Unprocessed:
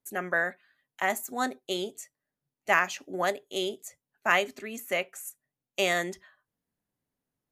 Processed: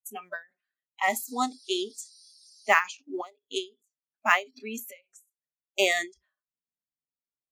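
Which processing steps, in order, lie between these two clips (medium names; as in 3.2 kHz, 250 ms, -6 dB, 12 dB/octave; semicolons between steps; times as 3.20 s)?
in parallel at -6 dB: short-mantissa float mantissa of 2-bit; 1.02–2.71 s: on the sum: band noise 3.5–11 kHz -50 dBFS; spectral noise reduction 25 dB; endings held to a fixed fall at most 250 dB/s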